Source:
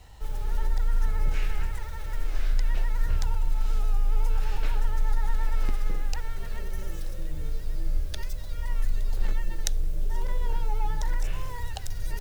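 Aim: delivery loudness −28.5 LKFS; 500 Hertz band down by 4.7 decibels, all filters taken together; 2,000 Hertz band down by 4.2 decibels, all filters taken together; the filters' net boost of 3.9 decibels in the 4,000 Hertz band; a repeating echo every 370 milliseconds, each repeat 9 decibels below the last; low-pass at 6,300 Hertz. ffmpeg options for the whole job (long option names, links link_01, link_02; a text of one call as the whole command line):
ffmpeg -i in.wav -af "lowpass=6300,equalizer=frequency=500:width_type=o:gain=-5.5,equalizer=frequency=2000:width_type=o:gain=-6.5,equalizer=frequency=4000:width_type=o:gain=7.5,aecho=1:1:370|740|1110|1480:0.355|0.124|0.0435|0.0152,volume=3.5dB" out.wav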